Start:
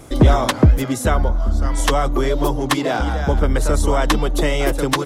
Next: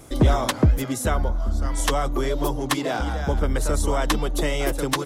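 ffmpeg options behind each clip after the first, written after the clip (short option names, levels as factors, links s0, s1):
-af "highshelf=f=5600:g=5,volume=0.531"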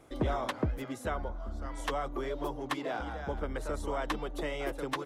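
-af "bass=f=250:g=-7,treble=f=4000:g=-12,volume=0.355"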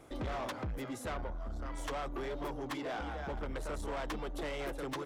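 -af "asoftclip=type=tanh:threshold=0.0158,volume=1.19"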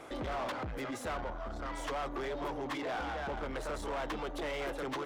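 -filter_complex "[0:a]asplit=2[s0][s1];[s1]highpass=f=720:p=1,volume=6.31,asoftclip=type=tanh:threshold=0.0188[s2];[s0][s2]amix=inputs=2:normalize=0,lowpass=f=3200:p=1,volume=0.501,volume=1.26"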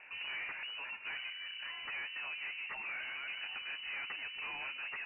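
-af "lowpass=f=2600:t=q:w=0.5098,lowpass=f=2600:t=q:w=0.6013,lowpass=f=2600:t=q:w=0.9,lowpass=f=2600:t=q:w=2.563,afreqshift=-3000,volume=0.562"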